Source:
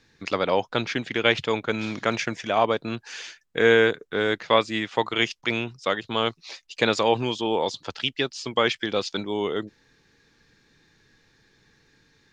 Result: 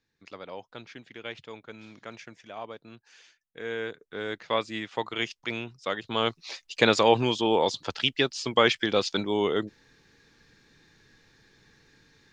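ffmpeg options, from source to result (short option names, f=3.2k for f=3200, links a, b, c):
-af "volume=1dB,afade=t=in:st=3.64:d=1.02:silence=0.281838,afade=t=in:st=5.82:d=0.77:silence=0.398107"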